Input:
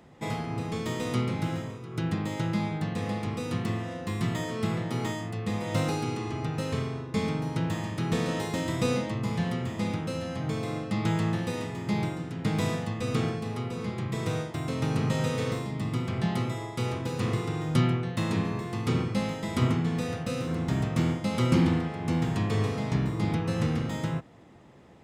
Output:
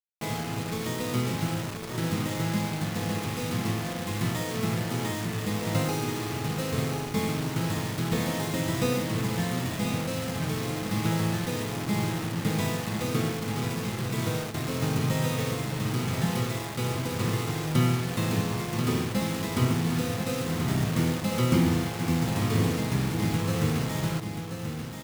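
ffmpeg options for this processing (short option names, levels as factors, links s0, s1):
-filter_complex "[0:a]asettb=1/sr,asplit=3[s0][s1][s2];[s0]atrim=end=12.864[s3];[s1]atrim=start=12.86:end=13.56,asetpts=PTS-STARTPTS,afade=t=in:d=0.004:c=qsin,afade=t=out:st=0.696:d=0.004:c=qsin,highpass=82[s4];[s2]atrim=start=13.556[s5];[s3][s4]acrossfade=d=0.004:c1=hsin:c2=qsin[s6];[s6][s5]acrossfade=d=0.004:c1=qsin:c2=hsin,acrusher=bits=5:mix=0:aa=0.000001,asplit=2[s7][s8];[s8]aecho=0:1:1033:0.447[s9];[s7][s9]amix=inputs=2:normalize=0"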